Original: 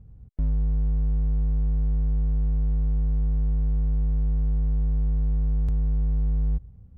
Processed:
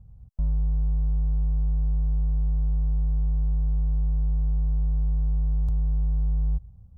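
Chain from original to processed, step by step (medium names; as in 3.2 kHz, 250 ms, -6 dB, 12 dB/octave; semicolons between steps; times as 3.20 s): static phaser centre 830 Hz, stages 4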